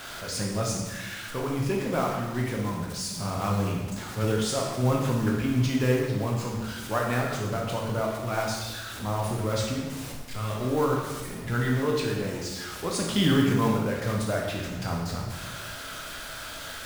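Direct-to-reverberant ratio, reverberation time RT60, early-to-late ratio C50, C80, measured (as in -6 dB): -1.0 dB, 1.2 s, 2.5 dB, 4.5 dB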